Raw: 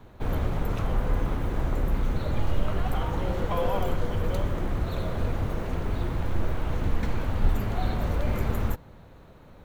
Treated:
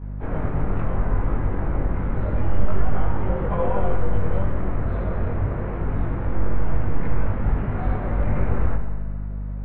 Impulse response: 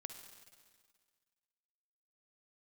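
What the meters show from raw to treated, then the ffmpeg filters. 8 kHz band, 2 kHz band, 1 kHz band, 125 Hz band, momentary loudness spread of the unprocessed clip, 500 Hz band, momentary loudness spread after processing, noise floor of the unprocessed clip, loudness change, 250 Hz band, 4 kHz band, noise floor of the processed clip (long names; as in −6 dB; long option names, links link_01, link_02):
below −30 dB, +1.5 dB, +2.5 dB, +4.5 dB, 3 LU, +3.0 dB, 3 LU, −50 dBFS, +3.5 dB, +4.0 dB, below −10 dB, −29 dBFS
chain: -filter_complex "[0:a]lowpass=frequency=2100:width=0.5412,lowpass=frequency=2100:width=1.3066,aeval=exprs='val(0)+0.02*(sin(2*PI*50*n/s)+sin(2*PI*2*50*n/s)/2+sin(2*PI*3*50*n/s)/3+sin(2*PI*4*50*n/s)/4+sin(2*PI*5*50*n/s)/5)':channel_layout=same,asplit=2[link_01][link_02];[1:a]atrim=start_sample=2205,adelay=21[link_03];[link_02][link_03]afir=irnorm=-1:irlink=0,volume=8.5dB[link_04];[link_01][link_04]amix=inputs=2:normalize=0,volume=-2.5dB"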